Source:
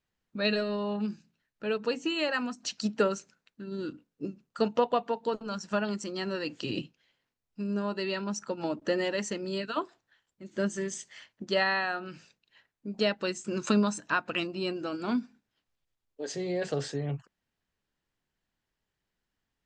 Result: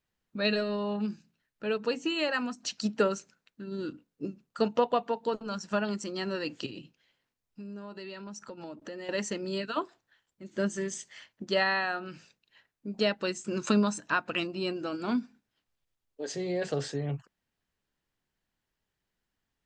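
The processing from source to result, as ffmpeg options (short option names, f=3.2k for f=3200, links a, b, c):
-filter_complex "[0:a]asettb=1/sr,asplit=3[a][b][c];[a]atrim=end=6.664[d];[b]atrim=start=6.66:end=9.09,asetpts=PTS-STARTPTS,afade=t=in:d=0.004:c=qsin,afade=t=out:st=2.426:d=0.004:c=qsin,acompressor=threshold=-42dB:ratio=3:attack=3.2:release=140:knee=1:detection=peak[e];[c]atrim=start=9.086[f];[d][e]acrossfade=d=0.004:c1=hsin:c2=qsin[g];[g][f]acrossfade=d=0.004:c1=qsin:c2=hsin"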